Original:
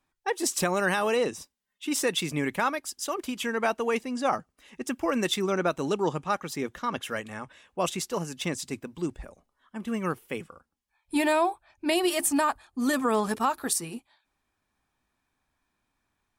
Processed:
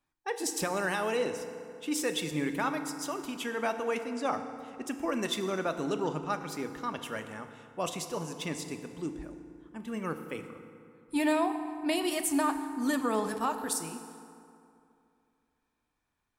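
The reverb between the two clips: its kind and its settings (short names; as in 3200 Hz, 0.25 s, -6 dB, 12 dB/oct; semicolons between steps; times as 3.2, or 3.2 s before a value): FDN reverb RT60 2.6 s, high-frequency decay 0.55×, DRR 7 dB; gain -5.5 dB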